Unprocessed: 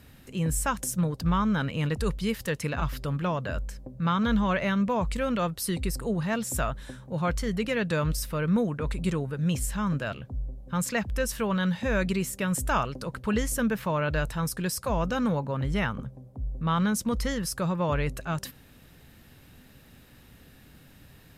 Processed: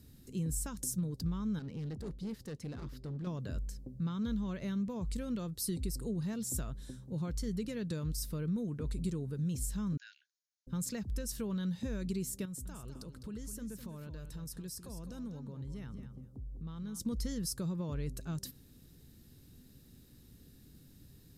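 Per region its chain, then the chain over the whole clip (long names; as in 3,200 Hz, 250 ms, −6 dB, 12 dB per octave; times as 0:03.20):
0:01.59–0:03.27: hard clipping −29.5 dBFS + low-pass filter 1,900 Hz 6 dB per octave + low-shelf EQ 93 Hz −11.5 dB
0:09.97–0:10.67: linear-phase brick-wall band-pass 1,400–7,000 Hz + parametric band 3,000 Hz −3.5 dB 1.3 octaves
0:12.45–0:17.00: downward compressor 3 to 1, threshold −39 dBFS + repeating echo 206 ms, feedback 16%, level −9.5 dB
whole clip: downward compressor, threshold −27 dBFS; flat-topped bell 1,300 Hz −13 dB 2.8 octaves; level −4 dB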